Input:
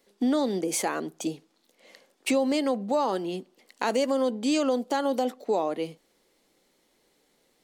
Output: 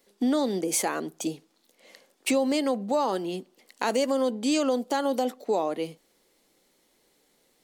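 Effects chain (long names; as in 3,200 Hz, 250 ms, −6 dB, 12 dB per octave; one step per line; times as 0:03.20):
high-shelf EQ 7,500 Hz +5.5 dB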